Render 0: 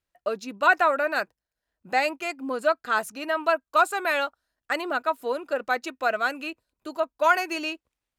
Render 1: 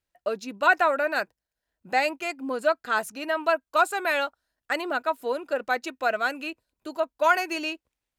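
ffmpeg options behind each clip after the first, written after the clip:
-af "equalizer=f=1.2k:t=o:w=0.23:g=-4"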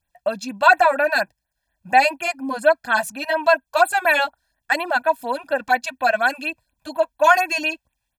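-af "aecho=1:1:1.2:0.85,afftfilt=real='re*(1-between(b*sr/1024,260*pow(6200/260,0.5+0.5*sin(2*PI*4.2*pts/sr))/1.41,260*pow(6200/260,0.5+0.5*sin(2*PI*4.2*pts/sr))*1.41))':imag='im*(1-between(b*sr/1024,260*pow(6200/260,0.5+0.5*sin(2*PI*4.2*pts/sr))/1.41,260*pow(6200/260,0.5+0.5*sin(2*PI*4.2*pts/sr))*1.41))':win_size=1024:overlap=0.75,volume=5.5dB"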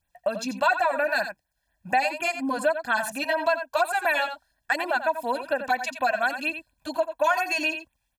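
-af "aecho=1:1:87:0.266,acompressor=threshold=-23dB:ratio=2.5"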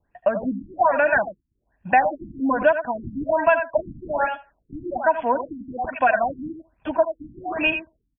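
-filter_complex "[0:a]acrossover=split=410|4500[a][b][c];[b]aecho=1:1:75|150:0.15|0.0344[d];[c]acrusher=samples=35:mix=1:aa=0.000001:lfo=1:lforange=56:lforate=1.3[e];[a][d][e]amix=inputs=3:normalize=0,afftfilt=real='re*lt(b*sr/1024,320*pow(3500/320,0.5+0.5*sin(2*PI*1.2*pts/sr)))':imag='im*lt(b*sr/1024,320*pow(3500/320,0.5+0.5*sin(2*PI*1.2*pts/sr)))':win_size=1024:overlap=0.75,volume=6dB"

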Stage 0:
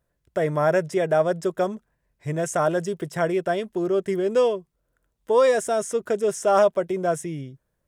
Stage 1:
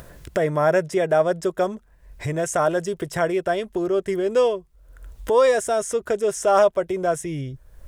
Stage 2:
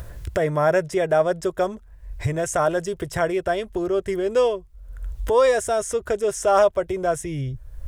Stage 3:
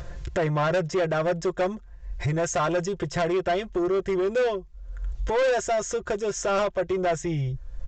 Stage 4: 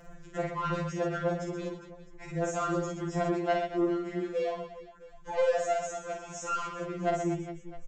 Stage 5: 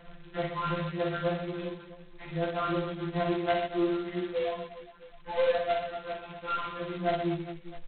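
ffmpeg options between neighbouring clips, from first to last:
-af "asubboost=boost=9.5:cutoff=58,acompressor=mode=upward:threshold=-23dB:ratio=2.5,volume=2dB"
-af "lowshelf=f=130:t=q:w=1.5:g=9"
-af "aecho=1:1:5.7:0.58,aresample=16000,asoftclip=type=tanh:threshold=-19.5dB,aresample=44100"
-af "aecho=1:1:50|125|237.5|406.2|659.4:0.631|0.398|0.251|0.158|0.1,afftfilt=real='re*2.83*eq(mod(b,8),0)':imag='im*2.83*eq(mod(b,8),0)':win_size=2048:overlap=0.75,volume=-8dB"
-ar 8000 -c:a adpcm_g726 -b:a 16k

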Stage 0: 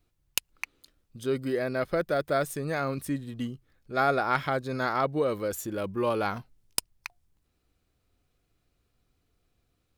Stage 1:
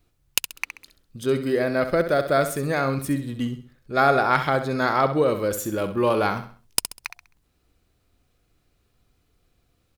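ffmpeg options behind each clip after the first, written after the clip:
-af "aecho=1:1:66|132|198|264:0.316|0.111|0.0387|0.0136,volume=6dB"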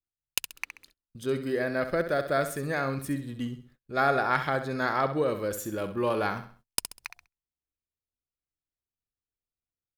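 -af "adynamicequalizer=threshold=0.00631:dfrequency=1700:dqfactor=6.7:tfrequency=1700:tqfactor=6.7:attack=5:release=100:ratio=0.375:range=3.5:mode=boostabove:tftype=bell,agate=range=-27dB:threshold=-50dB:ratio=16:detection=peak,volume=-6.5dB"

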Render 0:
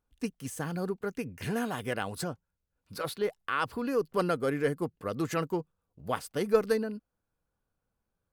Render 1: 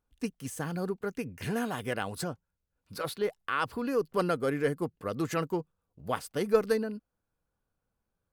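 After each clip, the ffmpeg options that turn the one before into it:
-af anull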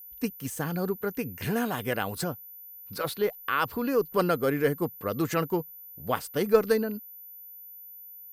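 -af "aeval=exprs='val(0)+0.00447*sin(2*PI*14000*n/s)':c=same,volume=3.5dB"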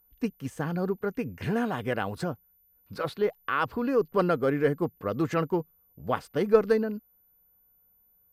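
-af "aemphasis=mode=reproduction:type=75fm"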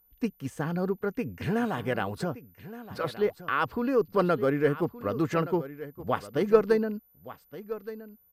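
-af "aecho=1:1:1171:0.178"

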